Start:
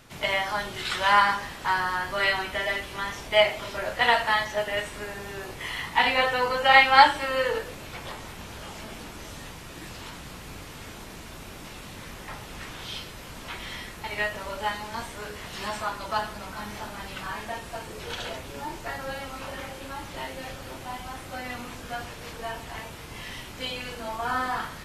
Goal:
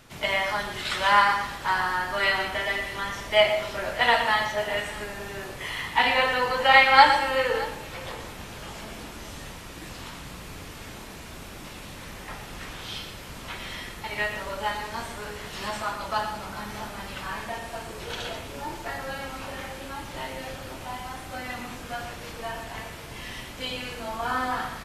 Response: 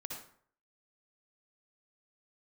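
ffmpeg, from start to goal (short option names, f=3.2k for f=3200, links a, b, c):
-filter_complex "[0:a]aecho=1:1:117|619:0.316|0.112,asplit=2[a][b];[1:a]atrim=start_sample=2205,adelay=55[c];[b][c]afir=irnorm=-1:irlink=0,volume=-10dB[d];[a][d]amix=inputs=2:normalize=0"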